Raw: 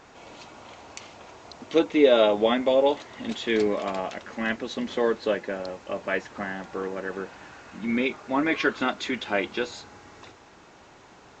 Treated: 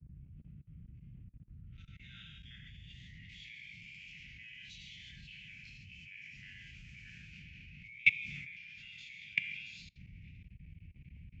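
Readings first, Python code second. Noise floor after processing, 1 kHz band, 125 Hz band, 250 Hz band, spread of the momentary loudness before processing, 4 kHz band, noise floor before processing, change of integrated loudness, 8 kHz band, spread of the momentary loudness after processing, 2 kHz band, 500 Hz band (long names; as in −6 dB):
−58 dBFS, below −40 dB, −6.0 dB, −31.0 dB, 23 LU, −14.5 dB, −52 dBFS, −14.0 dB, can't be measured, 19 LU, −7.0 dB, below −40 dB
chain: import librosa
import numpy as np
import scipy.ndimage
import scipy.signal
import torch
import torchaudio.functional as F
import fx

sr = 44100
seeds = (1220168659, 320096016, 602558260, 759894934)

y = fx.spec_steps(x, sr, hold_ms=50)
y = fx.rider(y, sr, range_db=5, speed_s=0.5)
y = fx.rev_gated(y, sr, seeds[0], gate_ms=180, shape='flat', drr_db=-0.5)
y = fx.env_lowpass(y, sr, base_hz=2500.0, full_db=-18.5)
y = scipy.signal.sosfilt(scipy.signal.cheby2(4, 60, [190.0, 1100.0], 'bandstop', fs=sr, output='sos'), y)
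y = fx.filter_sweep_bandpass(y, sr, from_hz=1100.0, to_hz=2300.0, start_s=1.17, end_s=3.71, q=7.3)
y = fx.low_shelf(y, sr, hz=390.0, db=11.0)
y = fx.dmg_noise_band(y, sr, seeds[1], low_hz=32.0, high_hz=170.0, level_db=-64.0)
y = fx.peak_eq(y, sr, hz=3800.0, db=-9.5, octaves=0.36)
y = fx.level_steps(y, sr, step_db=22)
y = fx.band_widen(y, sr, depth_pct=100)
y = F.gain(torch.from_numpy(y), 15.0).numpy()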